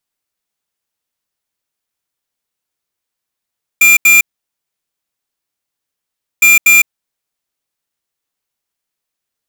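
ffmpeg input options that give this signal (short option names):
-f lavfi -i "aevalsrc='0.473*(2*lt(mod(2390*t,1),0.5)-1)*clip(min(mod(mod(t,2.61),0.24),0.16-mod(mod(t,2.61),0.24))/0.005,0,1)*lt(mod(t,2.61),0.48)':d=5.22:s=44100"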